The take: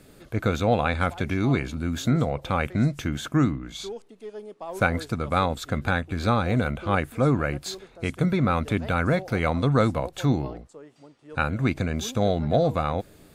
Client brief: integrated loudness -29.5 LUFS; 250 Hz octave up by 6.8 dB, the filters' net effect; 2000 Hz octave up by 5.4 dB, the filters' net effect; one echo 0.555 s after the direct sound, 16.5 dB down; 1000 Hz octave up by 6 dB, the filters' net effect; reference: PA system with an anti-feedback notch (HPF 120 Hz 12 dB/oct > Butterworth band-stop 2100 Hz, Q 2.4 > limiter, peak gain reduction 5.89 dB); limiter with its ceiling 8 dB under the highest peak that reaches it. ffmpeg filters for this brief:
-af "equalizer=f=250:t=o:g=8.5,equalizer=f=1k:t=o:g=5,equalizer=f=2k:t=o:g=8.5,alimiter=limit=-7.5dB:level=0:latency=1,highpass=120,asuperstop=centerf=2100:order=8:qfactor=2.4,aecho=1:1:555:0.15,volume=-5.5dB,alimiter=limit=-17dB:level=0:latency=1"

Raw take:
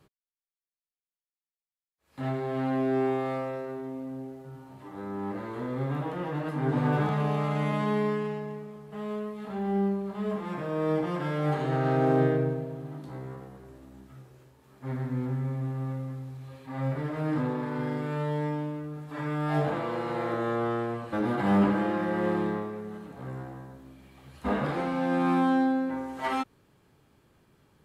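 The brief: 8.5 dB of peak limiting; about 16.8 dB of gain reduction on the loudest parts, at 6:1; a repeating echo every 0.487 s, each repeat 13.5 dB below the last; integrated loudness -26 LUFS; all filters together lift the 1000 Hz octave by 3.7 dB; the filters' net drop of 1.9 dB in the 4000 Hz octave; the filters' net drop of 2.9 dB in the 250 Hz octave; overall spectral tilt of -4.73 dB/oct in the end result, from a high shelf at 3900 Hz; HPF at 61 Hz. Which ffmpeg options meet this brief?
-af "highpass=61,equalizer=f=250:t=o:g=-4,equalizer=f=1k:t=o:g=5,highshelf=f=3.9k:g=3.5,equalizer=f=4k:t=o:g=-5,acompressor=threshold=-39dB:ratio=6,alimiter=level_in=12.5dB:limit=-24dB:level=0:latency=1,volume=-12.5dB,aecho=1:1:487|974:0.211|0.0444,volume=19dB"

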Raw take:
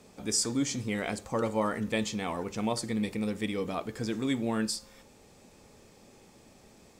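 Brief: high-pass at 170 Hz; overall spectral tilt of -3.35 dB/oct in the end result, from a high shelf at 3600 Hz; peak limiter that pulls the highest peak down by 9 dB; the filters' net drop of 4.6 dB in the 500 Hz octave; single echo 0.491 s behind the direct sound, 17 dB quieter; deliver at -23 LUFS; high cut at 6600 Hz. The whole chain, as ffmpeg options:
-af "highpass=170,lowpass=6.6k,equalizer=f=500:t=o:g=-5.5,highshelf=f=3.6k:g=5,alimiter=limit=-23.5dB:level=0:latency=1,aecho=1:1:491:0.141,volume=12dB"

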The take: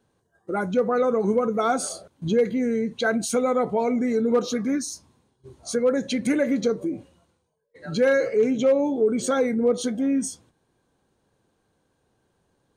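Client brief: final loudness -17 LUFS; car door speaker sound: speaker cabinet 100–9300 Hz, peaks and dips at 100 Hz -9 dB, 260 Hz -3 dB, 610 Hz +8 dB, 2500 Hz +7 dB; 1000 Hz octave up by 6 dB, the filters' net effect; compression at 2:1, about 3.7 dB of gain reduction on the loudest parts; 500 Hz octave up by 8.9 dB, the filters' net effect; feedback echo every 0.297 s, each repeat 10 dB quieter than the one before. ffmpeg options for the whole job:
-af "equalizer=f=500:t=o:g=6,equalizer=f=1k:t=o:g=3.5,acompressor=threshold=-16dB:ratio=2,highpass=100,equalizer=f=100:t=q:w=4:g=-9,equalizer=f=260:t=q:w=4:g=-3,equalizer=f=610:t=q:w=4:g=8,equalizer=f=2.5k:t=q:w=4:g=7,lowpass=f=9.3k:w=0.5412,lowpass=f=9.3k:w=1.3066,aecho=1:1:297|594|891|1188:0.316|0.101|0.0324|0.0104,volume=1.5dB"

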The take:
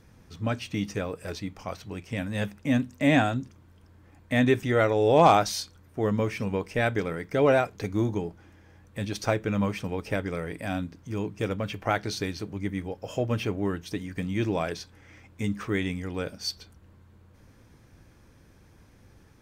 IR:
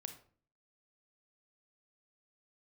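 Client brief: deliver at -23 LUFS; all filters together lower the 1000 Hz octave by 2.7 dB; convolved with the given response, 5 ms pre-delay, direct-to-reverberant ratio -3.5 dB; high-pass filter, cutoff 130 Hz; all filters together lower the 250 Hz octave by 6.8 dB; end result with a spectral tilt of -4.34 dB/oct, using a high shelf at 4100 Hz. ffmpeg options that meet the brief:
-filter_complex "[0:a]highpass=130,equalizer=f=250:t=o:g=-8,equalizer=f=1k:t=o:g=-3.5,highshelf=f=4.1k:g=3.5,asplit=2[a][b];[1:a]atrim=start_sample=2205,adelay=5[c];[b][c]afir=irnorm=-1:irlink=0,volume=7.5dB[d];[a][d]amix=inputs=2:normalize=0,volume=2.5dB"

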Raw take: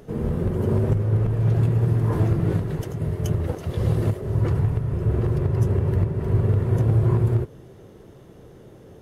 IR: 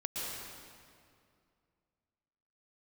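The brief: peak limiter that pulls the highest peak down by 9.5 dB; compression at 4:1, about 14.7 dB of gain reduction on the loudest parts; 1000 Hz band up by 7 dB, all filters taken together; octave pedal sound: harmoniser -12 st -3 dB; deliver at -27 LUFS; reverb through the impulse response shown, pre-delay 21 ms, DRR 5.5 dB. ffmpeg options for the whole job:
-filter_complex "[0:a]equalizer=f=1k:t=o:g=8.5,acompressor=threshold=-34dB:ratio=4,alimiter=level_in=8.5dB:limit=-24dB:level=0:latency=1,volume=-8.5dB,asplit=2[a][b];[1:a]atrim=start_sample=2205,adelay=21[c];[b][c]afir=irnorm=-1:irlink=0,volume=-9dB[d];[a][d]amix=inputs=2:normalize=0,asplit=2[e][f];[f]asetrate=22050,aresample=44100,atempo=2,volume=-3dB[g];[e][g]amix=inputs=2:normalize=0,volume=11.5dB"

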